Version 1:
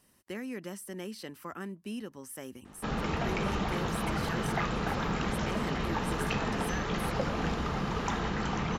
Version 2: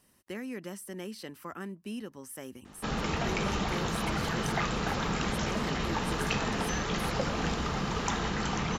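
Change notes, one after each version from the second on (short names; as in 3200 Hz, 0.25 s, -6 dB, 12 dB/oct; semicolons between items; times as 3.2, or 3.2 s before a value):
background: add high shelf 4300 Hz +10.5 dB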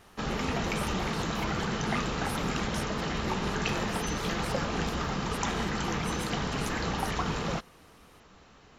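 background: entry -2.65 s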